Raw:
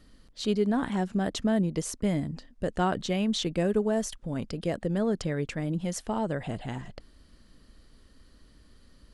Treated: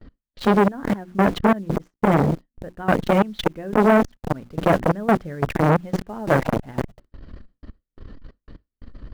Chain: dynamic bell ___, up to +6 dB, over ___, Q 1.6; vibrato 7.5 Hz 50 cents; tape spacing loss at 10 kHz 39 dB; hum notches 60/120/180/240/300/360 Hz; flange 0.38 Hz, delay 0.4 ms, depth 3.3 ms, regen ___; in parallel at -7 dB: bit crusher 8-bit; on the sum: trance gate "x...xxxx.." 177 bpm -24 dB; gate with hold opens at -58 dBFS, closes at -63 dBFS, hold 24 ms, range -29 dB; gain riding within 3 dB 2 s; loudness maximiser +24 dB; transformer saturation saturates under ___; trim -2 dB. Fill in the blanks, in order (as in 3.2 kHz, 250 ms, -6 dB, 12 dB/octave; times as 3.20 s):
1.6 kHz, -51 dBFS, -83%, 740 Hz